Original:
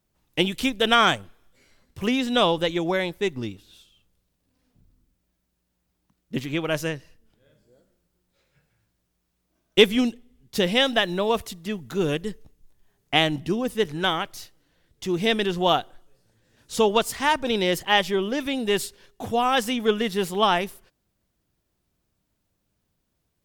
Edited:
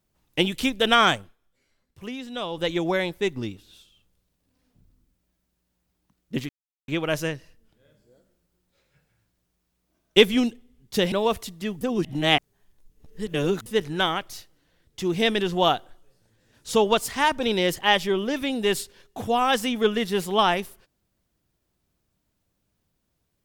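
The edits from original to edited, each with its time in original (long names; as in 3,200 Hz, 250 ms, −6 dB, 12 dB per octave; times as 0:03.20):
0:01.16–0:02.70: duck −11.5 dB, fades 0.20 s
0:06.49: splice in silence 0.39 s
0:10.73–0:11.16: remove
0:11.85–0:13.70: reverse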